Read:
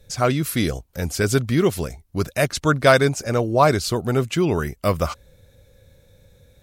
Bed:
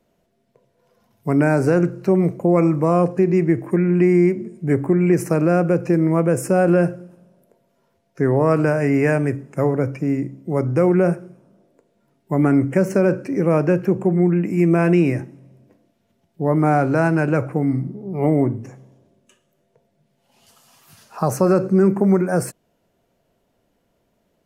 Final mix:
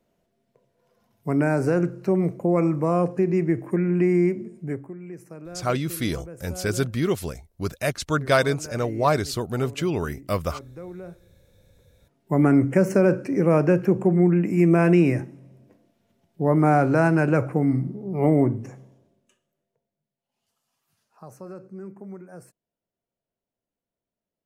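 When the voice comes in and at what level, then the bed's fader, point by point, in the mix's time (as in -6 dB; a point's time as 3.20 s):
5.45 s, -5.0 dB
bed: 4.59 s -5 dB
4.95 s -22.5 dB
11.22 s -22.5 dB
12.28 s -1.5 dB
18.80 s -1.5 dB
20.17 s -23.5 dB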